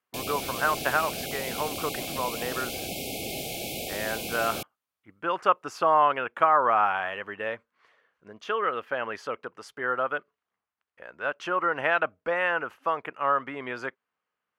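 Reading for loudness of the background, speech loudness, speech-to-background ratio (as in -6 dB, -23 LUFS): -33.0 LUFS, -28.0 LUFS, 5.0 dB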